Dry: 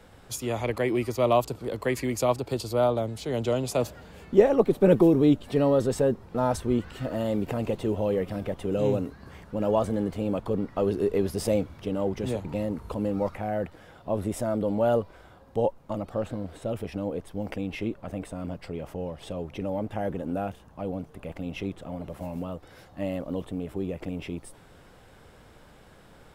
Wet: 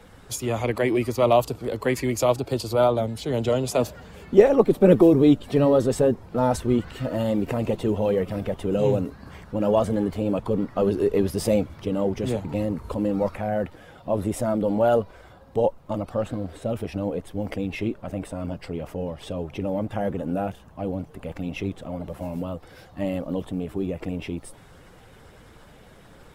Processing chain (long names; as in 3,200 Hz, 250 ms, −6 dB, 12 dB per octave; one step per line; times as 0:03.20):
spectral magnitudes quantised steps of 15 dB
level +4 dB